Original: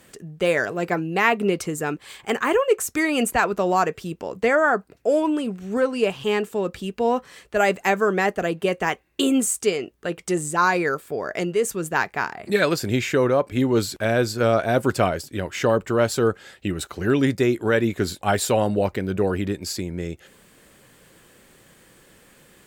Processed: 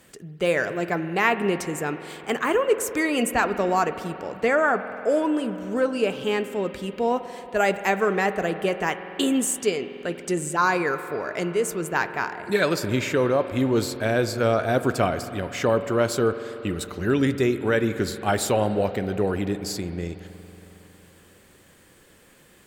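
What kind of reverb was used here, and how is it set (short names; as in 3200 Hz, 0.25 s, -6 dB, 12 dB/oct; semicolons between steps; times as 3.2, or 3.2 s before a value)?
spring tank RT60 3.7 s, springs 46 ms, chirp 35 ms, DRR 10.5 dB; gain -2 dB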